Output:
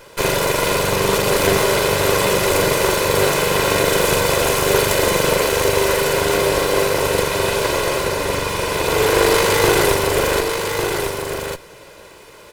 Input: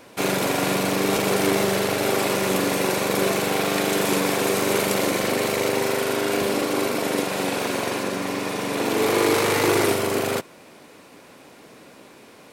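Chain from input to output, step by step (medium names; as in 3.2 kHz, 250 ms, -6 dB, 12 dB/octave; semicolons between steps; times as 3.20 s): comb filter that takes the minimum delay 2 ms; delay 1151 ms -6 dB; trim +6 dB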